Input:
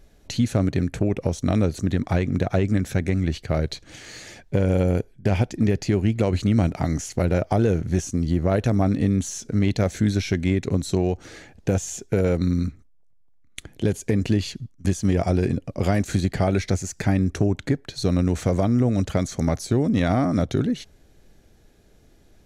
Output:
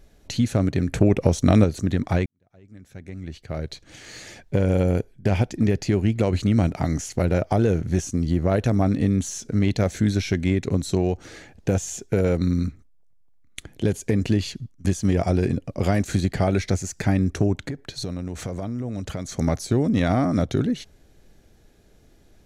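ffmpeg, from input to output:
-filter_complex "[0:a]asettb=1/sr,asplit=3[a][b][c];[a]atrim=end=17.624[d];[b]atrim=start=17.62:end=19.31,asetpts=PTS-STARTPTS,afade=t=in:d=0.004:c=qsin,afade=t=out:st=1.686:d=0.004:c=qsin,acompressor=threshold=-26dB:ratio=6:attack=3.2:release=140:knee=1:detection=peak[e];[c]atrim=start=19.306[f];[d][e]acrossfade=d=0.004:c1=hsin:c2=qsin[g];[g][f]acrossfade=d=0.004:c1=qsin:c2=hsin,asplit=4[h][i][j][k];[h]atrim=end=0.882[l];[i]atrim=start=0.878:end=1.642,asetpts=PTS-STARTPTS,volume=5dB[m];[j]atrim=start=1.638:end=2.26,asetpts=PTS-STARTPTS,afade=t=out:st=0.618:d=0.004:c=hsin[n];[k]atrim=start=2.26,asetpts=PTS-STARTPTS,afade=t=in:d=1.94:c=qua[o];[l][m]acrossfade=d=0.004:c1=hsin:c2=hsin[p];[n][o]concat=n=2:v=0:a=1[q];[p][q]acrossfade=d=0.004:c1=hsin:c2=hsin"

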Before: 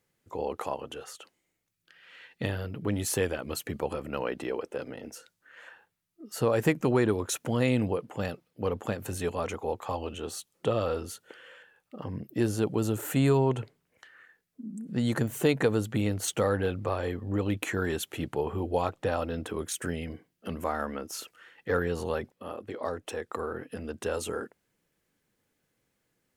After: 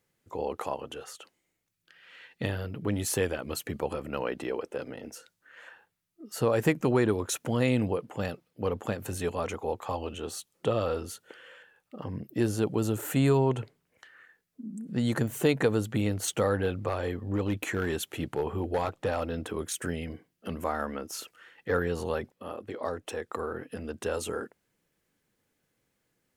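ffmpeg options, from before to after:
-filter_complex "[0:a]asettb=1/sr,asplit=3[a][b][c];[a]atrim=end=16.884[d];[b]atrim=start=16.88:end=19.87,asetpts=PTS-STARTPTS,afade=t=in:d=0.004:c=qsin,afade=t=out:st=2.986:d=0.004:c=qsin,asoftclip=type=hard:threshold=-21.5dB[e];[c]atrim=start=19.866[f];[d][e]acrossfade=d=0.004:c1=hsin:c2=qsin[g];[g][f]acrossfade=d=0.004:c1=qsin:c2=hsin"

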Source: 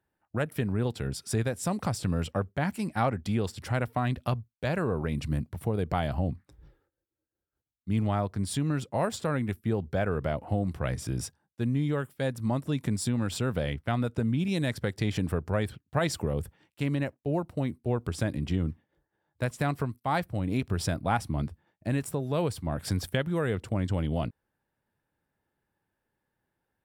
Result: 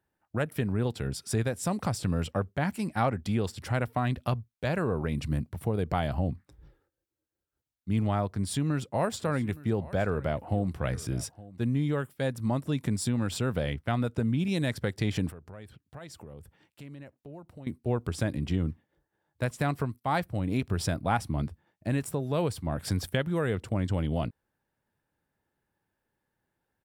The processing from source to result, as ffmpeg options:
-filter_complex "[0:a]asplit=3[a][b][c];[a]afade=t=out:st=9.17:d=0.02[d];[b]aecho=1:1:866:0.106,afade=t=in:st=9.17:d=0.02,afade=t=out:st=11.63:d=0.02[e];[c]afade=t=in:st=11.63:d=0.02[f];[d][e][f]amix=inputs=3:normalize=0,asettb=1/sr,asplit=3[g][h][i];[g]atrim=end=15.304[j];[h]atrim=start=15.3:end=17.67,asetpts=PTS-STARTPTS,afade=t=in:d=0.004:c=qsin,afade=t=out:st=2.366:d=0.004:c=qsin,acompressor=threshold=-50dB:ratio=2.5:attack=3.2:release=140:knee=1:detection=peak[k];[i]atrim=start=17.666[l];[j][k]acrossfade=d=0.004:c1=hsin:c2=qsin[m];[m][l]acrossfade=d=0.004:c1=qsin:c2=hsin"

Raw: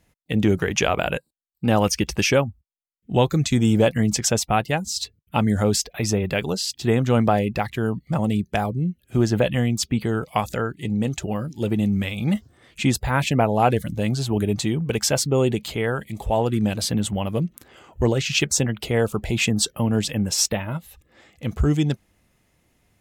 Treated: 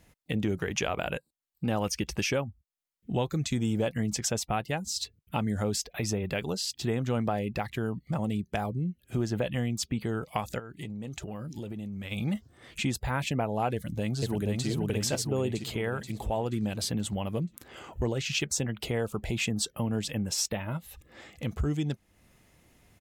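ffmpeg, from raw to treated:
-filter_complex "[0:a]asplit=3[a][b][c];[a]afade=t=out:st=10.58:d=0.02[d];[b]acompressor=threshold=-35dB:ratio=6:attack=3.2:release=140:knee=1:detection=peak,afade=t=in:st=10.58:d=0.02,afade=t=out:st=12.11:d=0.02[e];[c]afade=t=in:st=12.11:d=0.02[f];[d][e][f]amix=inputs=3:normalize=0,asplit=2[g][h];[h]afade=t=in:st=13.74:d=0.01,afade=t=out:st=14.67:d=0.01,aecho=0:1:480|960|1440|1920|2400|2880:0.891251|0.401063|0.180478|0.0812152|0.0365469|0.0164461[i];[g][i]amix=inputs=2:normalize=0,acompressor=threshold=-40dB:ratio=2,volume=3dB"

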